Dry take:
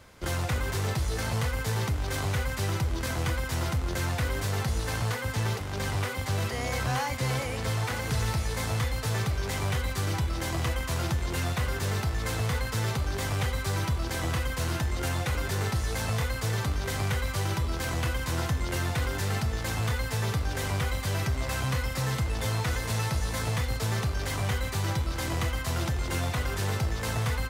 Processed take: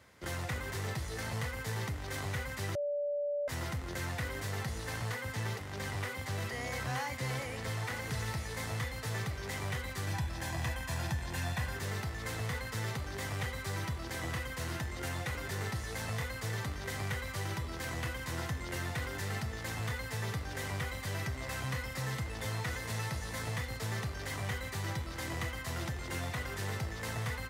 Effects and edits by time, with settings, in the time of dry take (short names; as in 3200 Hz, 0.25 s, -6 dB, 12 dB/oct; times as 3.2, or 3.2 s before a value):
2.75–3.48 bleep 580 Hz -23.5 dBFS
10.07–11.76 comb 1.2 ms, depth 47%
whole clip: HPF 75 Hz; bell 1900 Hz +7.5 dB 0.22 oct; gain -7.5 dB